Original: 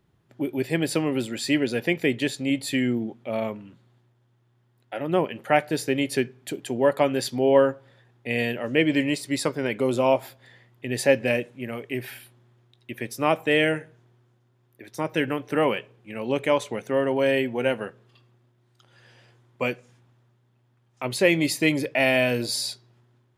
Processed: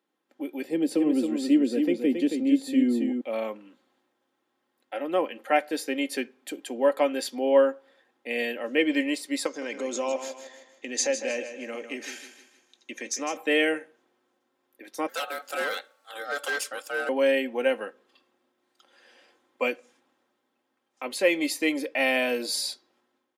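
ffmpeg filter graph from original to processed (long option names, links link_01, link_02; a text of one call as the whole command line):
ffmpeg -i in.wav -filter_complex "[0:a]asettb=1/sr,asplit=3[link_01][link_02][link_03];[link_01]atrim=end=0.644[link_04];[link_02]atrim=start=0.64:end=3.21,asetpts=PTS-STARTPTS,afade=type=in:duration=0.004:curve=qsin,afade=type=out:start_time=2.566:duration=0.004:curve=qsin,acrossover=split=380|3000[link_05][link_06][link_07];[link_06]acompressor=threshold=-49dB:ratio=2:attack=3.2:release=140:knee=2.83:detection=peak[link_08];[link_05][link_08][link_07]amix=inputs=3:normalize=0,tiltshelf=frequency=1100:gain=8,aecho=1:1:273:0.501,atrim=end_sample=113337[link_09];[link_03]atrim=start=3.206[link_10];[link_04][link_09]acrossfade=duration=0.004:curve1=hsin:curve2=qsin[link_11];[link_11][link_10]acrossfade=duration=0.004:curve1=qsin:curve2=hsin,asettb=1/sr,asplit=3[link_12][link_13][link_14];[link_12]atrim=end=9.464[link_15];[link_13]atrim=start=9.46:end=13.37,asetpts=PTS-STARTPTS,afade=type=in:duration=0.004:curve=qsin,afade=type=out:start_time=3.906:duration=0.004:curve=qsin,acompressor=threshold=-29dB:ratio=2:attack=3.2:release=140:knee=1:detection=peak,lowpass=frequency=6500:width_type=q:width=11,aecho=1:1:156|312|468|624:0.316|0.126|0.0506|0.0202,atrim=end_sample=172431[link_16];[link_14]atrim=start=13.366[link_17];[link_15][link_16]acrossfade=duration=0.004:curve1=hsin:curve2=qsin[link_18];[link_18][link_17]acrossfade=duration=0.004:curve1=qsin:curve2=hsin,asettb=1/sr,asplit=3[link_19][link_20][link_21];[link_19]atrim=end=15.084[link_22];[link_20]atrim=start=15.08:end=17.09,asetpts=PTS-STARTPTS,afade=type=in:duration=0.004:curve=qsin,afade=type=out:start_time=2.006:duration=0.004:curve=qsin,bass=frequency=250:gain=-10,treble=frequency=4000:gain=13,asoftclip=type=hard:threshold=-21.5dB,aeval=exprs='val(0)*sin(2*PI*1000*n/s)':channel_layout=same[link_23];[link_21]atrim=start=17.086[link_24];[link_22][link_23]acrossfade=duration=0.004:curve1=hsin:curve2=qsin[link_25];[link_25][link_24]acrossfade=duration=0.004:curve1=qsin:curve2=hsin,highpass=frequency=280:width=0.5412,highpass=frequency=280:width=1.3066,aecho=1:1:3.8:0.51,dynaudnorm=framelen=250:gausssize=5:maxgain=6dB,volume=-7.5dB" out.wav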